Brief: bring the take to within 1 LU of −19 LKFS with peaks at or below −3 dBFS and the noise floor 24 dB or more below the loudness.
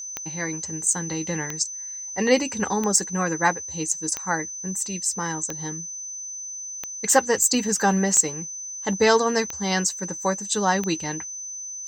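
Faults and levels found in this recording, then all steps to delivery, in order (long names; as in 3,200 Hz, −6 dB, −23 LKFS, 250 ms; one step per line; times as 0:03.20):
number of clicks 9; interfering tone 6,100 Hz; level of the tone −32 dBFS; integrated loudness −23.5 LKFS; sample peak −4.0 dBFS; target loudness −19.0 LKFS
→ click removal
notch filter 6,100 Hz, Q 30
level +4.5 dB
brickwall limiter −3 dBFS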